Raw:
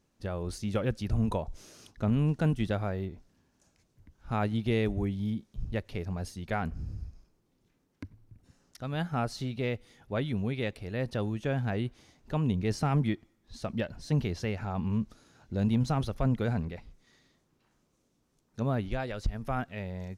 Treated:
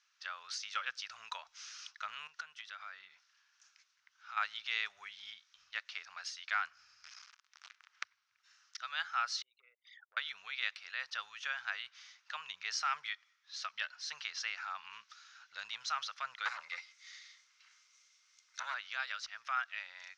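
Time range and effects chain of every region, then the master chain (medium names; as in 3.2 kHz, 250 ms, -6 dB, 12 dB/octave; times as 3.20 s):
2.27–4.37 s: peaking EQ 200 Hz +7.5 dB 1.3 oct + compression 12:1, threshold -32 dBFS
7.04–8.04 s: band-stop 560 Hz, Q 14 + waveshaping leveller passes 5 + three bands compressed up and down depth 100%
9.42–10.17 s: resonances exaggerated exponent 3 + high-pass 480 Hz 24 dB/octave + compression 5:1, threshold -46 dBFS
16.45–18.74 s: RIAA curve recording + small resonant body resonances 200/500/2100 Hz, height 16 dB + transformer saturation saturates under 920 Hz
whole clip: elliptic band-pass 1.3–5.9 kHz, stop band 60 dB; dynamic bell 2.3 kHz, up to -4 dB, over -52 dBFS, Q 0.86; trim +7.5 dB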